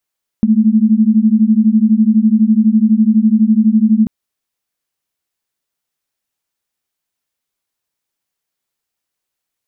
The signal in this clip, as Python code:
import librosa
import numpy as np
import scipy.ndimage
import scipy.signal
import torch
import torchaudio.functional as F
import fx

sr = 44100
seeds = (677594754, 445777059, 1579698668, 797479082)

y = fx.two_tone_beats(sr, length_s=3.64, hz=212.0, beat_hz=12.0, level_db=-10.5)